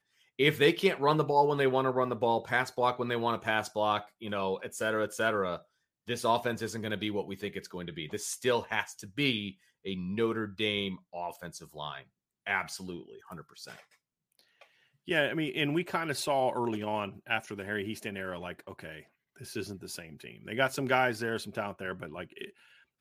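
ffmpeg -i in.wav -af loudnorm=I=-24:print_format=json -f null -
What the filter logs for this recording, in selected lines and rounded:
"input_i" : "-31.4",
"input_tp" : "-10.5",
"input_lra" : "9.5",
"input_thresh" : "-42.5",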